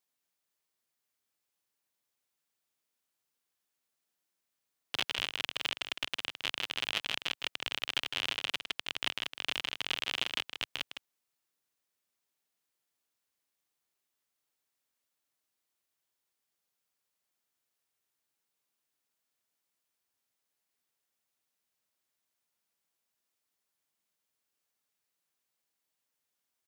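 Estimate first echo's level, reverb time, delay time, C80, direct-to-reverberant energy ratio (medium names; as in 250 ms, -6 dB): -8.5 dB, no reverb, 158 ms, no reverb, no reverb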